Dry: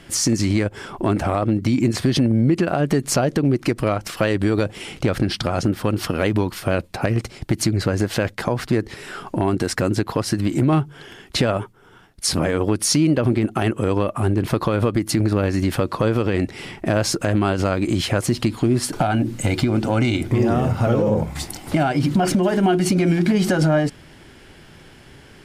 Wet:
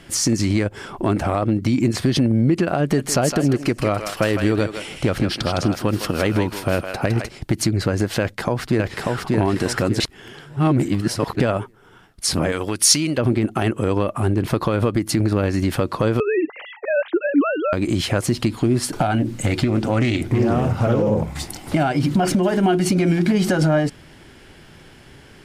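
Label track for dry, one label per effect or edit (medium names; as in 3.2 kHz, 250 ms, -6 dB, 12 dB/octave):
2.820000	7.290000	thinning echo 160 ms, feedback 28%, high-pass 810 Hz, level -4.5 dB
8.200000	9.310000	echo throw 590 ms, feedback 35%, level -1.5 dB
10.000000	11.400000	reverse
12.520000	13.180000	tilt shelf lows -6.5 dB, about 1.2 kHz
16.200000	17.730000	formants replaced by sine waves
19.180000	21.710000	loudspeaker Doppler distortion depth 0.21 ms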